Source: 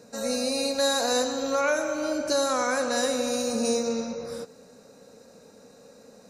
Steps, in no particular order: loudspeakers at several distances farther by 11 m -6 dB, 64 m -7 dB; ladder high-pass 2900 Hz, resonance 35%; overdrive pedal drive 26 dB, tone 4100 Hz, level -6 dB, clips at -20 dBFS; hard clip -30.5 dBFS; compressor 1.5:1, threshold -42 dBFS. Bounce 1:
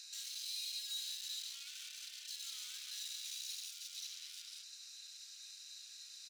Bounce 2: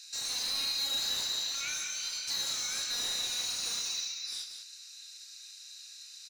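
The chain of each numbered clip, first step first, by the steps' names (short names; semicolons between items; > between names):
loudspeakers at several distances > overdrive pedal > hard clip > compressor > ladder high-pass; ladder high-pass > overdrive pedal > compressor > hard clip > loudspeakers at several distances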